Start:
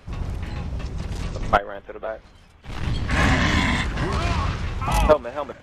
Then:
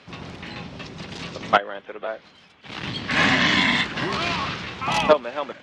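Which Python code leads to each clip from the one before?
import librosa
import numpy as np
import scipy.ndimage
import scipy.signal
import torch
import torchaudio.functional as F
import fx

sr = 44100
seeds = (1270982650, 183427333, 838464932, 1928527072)

y = scipy.signal.sosfilt(scipy.signal.cheby1(2, 1.0, [200.0, 3700.0], 'bandpass', fs=sr, output='sos'), x)
y = fx.high_shelf(y, sr, hz=2400.0, db=11.0)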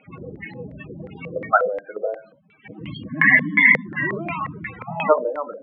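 y = fx.room_shoebox(x, sr, seeds[0], volume_m3=240.0, walls='furnished', distance_m=0.57)
y = fx.spec_topn(y, sr, count=16)
y = fx.filter_lfo_lowpass(y, sr, shape='square', hz=2.8, low_hz=500.0, high_hz=2000.0, q=5.7)
y = y * 10.0 ** (-1.0 / 20.0)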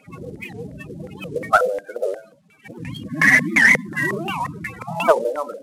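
y = fx.cvsd(x, sr, bps=64000)
y = fx.record_warp(y, sr, rpm=78.0, depth_cents=250.0)
y = y * 10.0 ** (2.0 / 20.0)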